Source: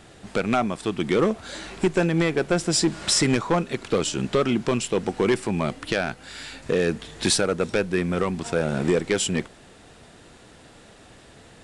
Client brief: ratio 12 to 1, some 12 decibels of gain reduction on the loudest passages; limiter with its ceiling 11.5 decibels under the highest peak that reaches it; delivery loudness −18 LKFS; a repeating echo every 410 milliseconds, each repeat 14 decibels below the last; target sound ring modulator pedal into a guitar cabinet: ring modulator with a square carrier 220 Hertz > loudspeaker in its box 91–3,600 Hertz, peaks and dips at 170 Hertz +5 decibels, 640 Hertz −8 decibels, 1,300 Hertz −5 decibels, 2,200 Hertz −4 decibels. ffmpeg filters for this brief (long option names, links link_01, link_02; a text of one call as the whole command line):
ffmpeg -i in.wav -af "acompressor=threshold=-29dB:ratio=12,alimiter=level_in=2dB:limit=-24dB:level=0:latency=1,volume=-2dB,aecho=1:1:410|820:0.2|0.0399,aeval=exprs='val(0)*sgn(sin(2*PI*220*n/s))':channel_layout=same,highpass=91,equalizer=frequency=170:width_type=q:width=4:gain=5,equalizer=frequency=640:width_type=q:width=4:gain=-8,equalizer=frequency=1300:width_type=q:width=4:gain=-5,equalizer=frequency=2200:width_type=q:width=4:gain=-4,lowpass=frequency=3600:width=0.5412,lowpass=frequency=3600:width=1.3066,volume=20.5dB" out.wav